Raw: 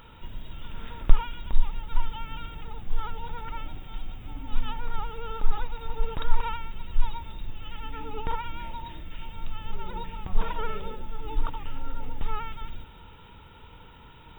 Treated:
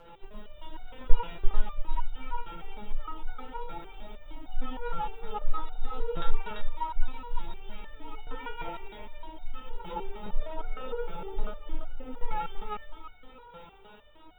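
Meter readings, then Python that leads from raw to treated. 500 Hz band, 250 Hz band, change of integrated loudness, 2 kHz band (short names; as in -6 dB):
+1.5 dB, -2.5 dB, -3.0 dB, -3.0 dB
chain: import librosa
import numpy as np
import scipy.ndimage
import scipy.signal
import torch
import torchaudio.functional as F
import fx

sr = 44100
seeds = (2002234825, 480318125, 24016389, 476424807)

y = fx.peak_eq(x, sr, hz=650.0, db=12.5, octaves=1.7)
y = fx.rotary_switch(y, sr, hz=7.5, then_hz=0.8, switch_at_s=7.54)
y = fx.echo_feedback(y, sr, ms=340, feedback_pct=36, wet_db=-4.5)
y = fx.resonator_held(y, sr, hz=6.5, low_hz=170.0, high_hz=730.0)
y = F.gain(torch.from_numpy(y), 9.0).numpy()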